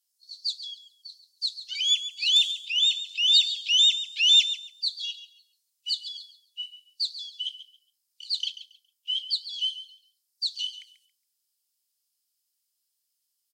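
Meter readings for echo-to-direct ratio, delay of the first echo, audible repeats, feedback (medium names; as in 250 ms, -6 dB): -13.0 dB, 138 ms, 2, 22%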